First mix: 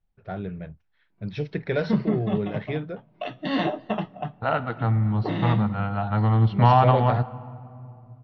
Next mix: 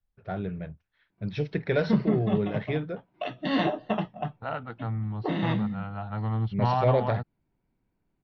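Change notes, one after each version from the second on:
second voice -6.0 dB; reverb: off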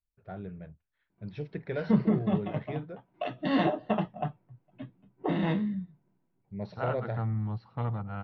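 first voice -8.0 dB; second voice: entry +2.35 s; master: add treble shelf 2.9 kHz -8 dB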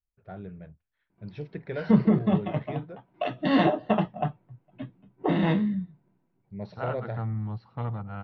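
background +4.5 dB

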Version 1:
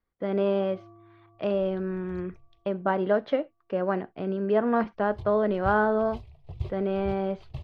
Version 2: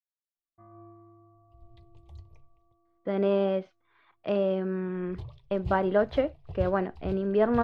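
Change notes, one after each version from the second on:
speech: entry +2.85 s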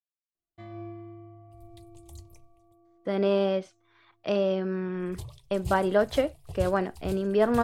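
first sound: remove four-pole ladder low-pass 1.3 kHz, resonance 65%; master: remove distance through air 300 m

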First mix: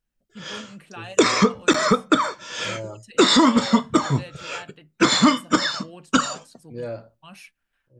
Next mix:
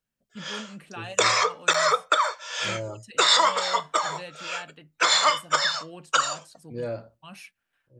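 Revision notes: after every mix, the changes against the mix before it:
background: add steep high-pass 520 Hz 36 dB/octave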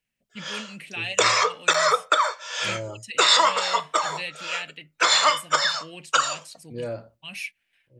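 first voice: add resonant high shelf 1.7 kHz +8 dB, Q 3; background: send +7.0 dB

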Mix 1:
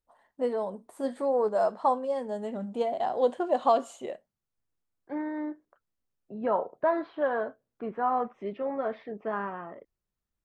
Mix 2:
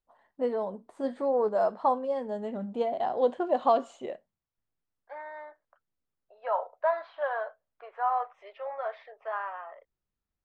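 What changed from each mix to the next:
first voice: add distance through air 97 m; second voice: add steep high-pass 580 Hz 36 dB/octave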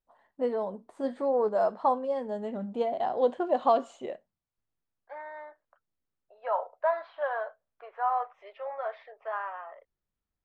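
second voice: add distance through air 55 m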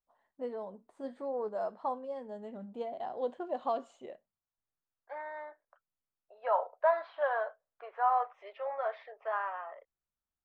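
first voice -9.5 dB

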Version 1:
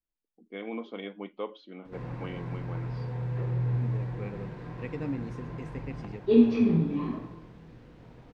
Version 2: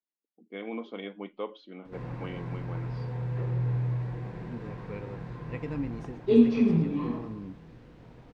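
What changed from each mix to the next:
second voice: entry +0.70 s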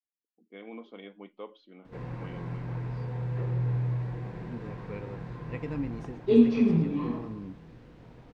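first voice -7.0 dB

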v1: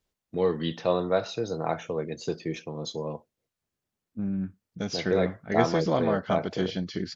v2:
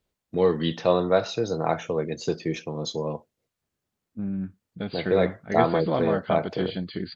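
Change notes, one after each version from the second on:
first voice +4.0 dB; second voice: add brick-wall FIR low-pass 4.8 kHz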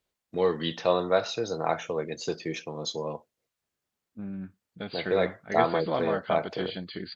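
master: add bass shelf 390 Hz -9 dB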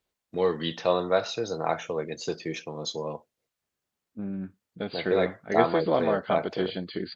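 second voice: add peaking EQ 400 Hz +6.5 dB 1.9 oct

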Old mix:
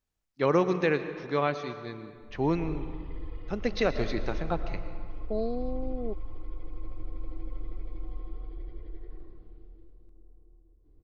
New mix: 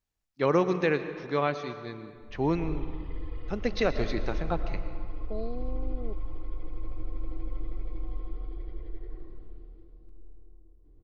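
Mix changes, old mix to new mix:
second voice -6.0 dB; background: send +11.0 dB

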